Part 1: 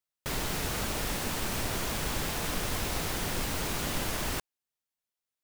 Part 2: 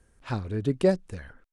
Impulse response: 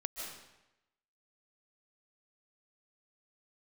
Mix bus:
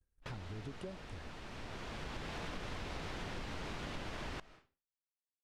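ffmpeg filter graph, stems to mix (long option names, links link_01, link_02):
-filter_complex "[0:a]lowpass=3800,volume=-4.5dB,asplit=2[link_01][link_02];[link_02]volume=-18.5dB[link_03];[1:a]lowshelf=frequency=76:gain=11.5,acompressor=threshold=-29dB:ratio=6,volume=-12.5dB,asplit=2[link_04][link_05];[link_05]apad=whole_len=239842[link_06];[link_01][link_06]sidechaincompress=threshold=-60dB:ratio=6:attack=16:release=1080[link_07];[2:a]atrim=start_sample=2205[link_08];[link_03][link_08]afir=irnorm=-1:irlink=0[link_09];[link_07][link_04][link_09]amix=inputs=3:normalize=0,agate=range=-33dB:threshold=-56dB:ratio=3:detection=peak,acompressor=threshold=-39dB:ratio=6"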